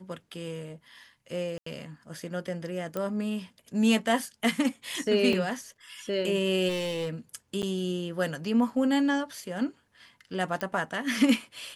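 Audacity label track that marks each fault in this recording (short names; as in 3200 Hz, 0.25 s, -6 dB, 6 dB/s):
1.580000	1.660000	gap 84 ms
2.970000	2.970000	pop -19 dBFS
5.330000	5.330000	gap 2.5 ms
6.680000	7.090000	clipped -26.5 dBFS
7.620000	7.630000	gap 8.8 ms
10.610000	10.610000	pop -17 dBFS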